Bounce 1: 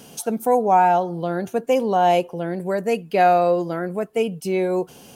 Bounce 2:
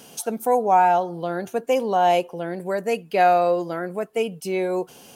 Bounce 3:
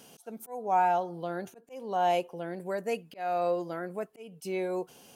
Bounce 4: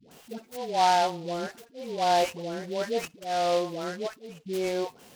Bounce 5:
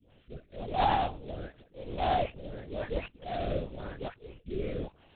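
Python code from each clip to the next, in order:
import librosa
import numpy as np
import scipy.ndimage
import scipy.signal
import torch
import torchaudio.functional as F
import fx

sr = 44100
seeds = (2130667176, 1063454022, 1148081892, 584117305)

y1 = fx.low_shelf(x, sr, hz=270.0, db=-8.0)
y2 = fx.auto_swell(y1, sr, attack_ms=319.0)
y2 = F.gain(torch.from_numpy(y2), -8.0).numpy()
y3 = fx.dispersion(y2, sr, late='highs', ms=114.0, hz=640.0)
y3 = fx.noise_mod_delay(y3, sr, seeds[0], noise_hz=3400.0, depth_ms=0.05)
y3 = F.gain(torch.from_numpy(y3), 3.0).numpy()
y4 = fx.lpc_vocoder(y3, sr, seeds[1], excitation='whisper', order=8)
y4 = fx.rotary(y4, sr, hz=0.9)
y4 = F.gain(torch.from_numpy(y4), -3.5).numpy()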